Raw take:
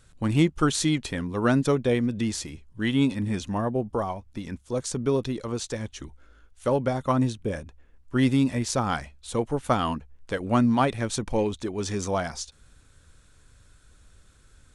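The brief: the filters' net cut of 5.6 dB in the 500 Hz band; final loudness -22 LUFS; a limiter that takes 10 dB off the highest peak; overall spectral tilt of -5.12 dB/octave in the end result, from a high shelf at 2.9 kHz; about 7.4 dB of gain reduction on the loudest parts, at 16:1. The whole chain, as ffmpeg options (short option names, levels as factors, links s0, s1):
-af "equalizer=f=500:t=o:g=-7,highshelf=f=2900:g=-3.5,acompressor=threshold=0.0562:ratio=16,volume=5.31,alimiter=limit=0.266:level=0:latency=1"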